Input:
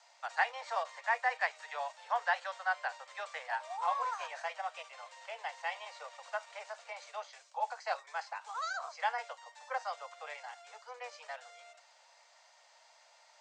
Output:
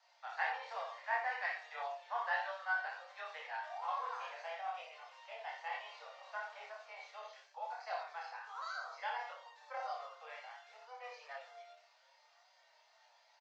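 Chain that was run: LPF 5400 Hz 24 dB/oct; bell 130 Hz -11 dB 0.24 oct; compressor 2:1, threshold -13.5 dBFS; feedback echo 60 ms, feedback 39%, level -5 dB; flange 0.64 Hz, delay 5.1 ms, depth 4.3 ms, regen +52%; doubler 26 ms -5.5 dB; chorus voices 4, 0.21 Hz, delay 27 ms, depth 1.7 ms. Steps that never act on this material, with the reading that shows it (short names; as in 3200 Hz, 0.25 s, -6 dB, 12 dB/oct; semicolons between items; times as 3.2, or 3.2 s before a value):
bell 130 Hz: input band starts at 400 Hz; compressor, threshold -13.5 dBFS: input peak -18.0 dBFS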